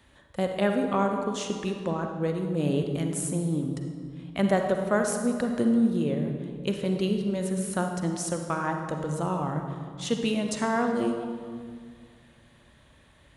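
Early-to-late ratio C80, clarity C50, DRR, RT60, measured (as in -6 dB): 6.0 dB, 4.5 dB, 4.0 dB, 1.9 s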